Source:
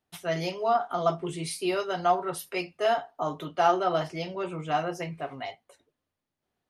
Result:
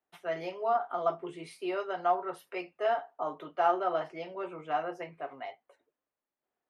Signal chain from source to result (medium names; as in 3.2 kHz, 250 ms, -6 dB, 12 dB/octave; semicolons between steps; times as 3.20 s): three-band isolator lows -16 dB, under 290 Hz, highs -16 dB, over 2.6 kHz; trim -3.5 dB